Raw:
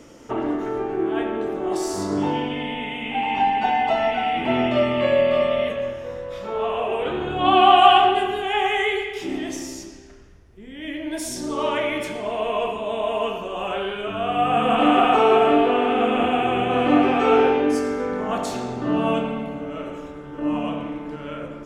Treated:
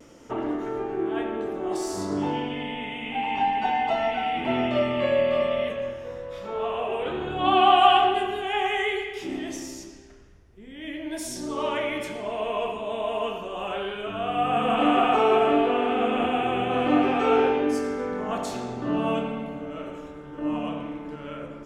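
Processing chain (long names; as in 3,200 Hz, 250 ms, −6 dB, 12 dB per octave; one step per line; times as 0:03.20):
pitch vibrato 0.31 Hz 14 cents
level −4 dB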